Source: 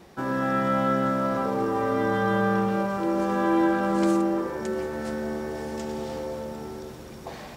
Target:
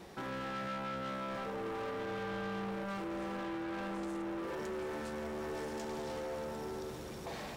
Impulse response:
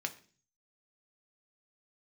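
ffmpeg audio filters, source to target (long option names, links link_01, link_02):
-filter_complex "[0:a]alimiter=limit=-24dB:level=0:latency=1:release=70,asoftclip=type=tanh:threshold=-36dB,asplit=2[link_01][link_02];[1:a]atrim=start_sample=2205,asetrate=70560,aresample=44100[link_03];[link_02][link_03]afir=irnorm=-1:irlink=0,volume=-5dB[link_04];[link_01][link_04]amix=inputs=2:normalize=0,volume=-3dB"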